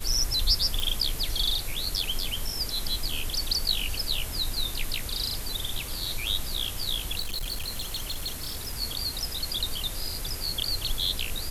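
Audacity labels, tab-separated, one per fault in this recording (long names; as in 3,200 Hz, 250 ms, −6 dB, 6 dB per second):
0.800000	0.800000	click
7.190000	8.810000	clipping −27.5 dBFS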